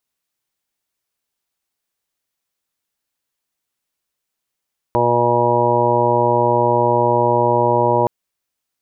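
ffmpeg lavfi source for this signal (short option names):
-f lavfi -i "aevalsrc='0.0708*sin(2*PI*120*t)+0.0447*sin(2*PI*240*t)+0.0944*sin(2*PI*360*t)+0.1*sin(2*PI*480*t)+0.112*sin(2*PI*600*t)+0.0335*sin(2*PI*720*t)+0.0891*sin(2*PI*840*t)+0.133*sin(2*PI*960*t)':d=3.12:s=44100"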